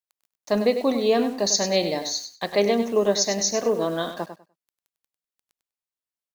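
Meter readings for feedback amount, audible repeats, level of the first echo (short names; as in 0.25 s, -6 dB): 18%, 2, -10.0 dB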